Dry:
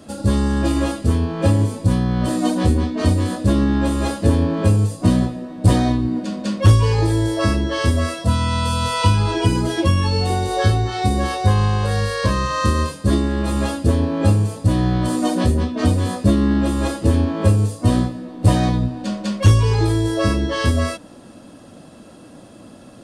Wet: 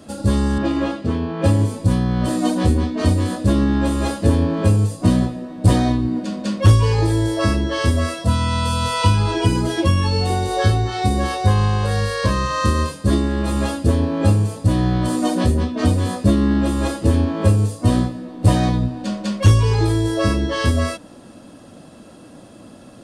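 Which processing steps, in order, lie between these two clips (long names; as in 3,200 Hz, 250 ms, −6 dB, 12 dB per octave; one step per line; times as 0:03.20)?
0:00.58–0:01.44: band-pass filter 120–3,800 Hz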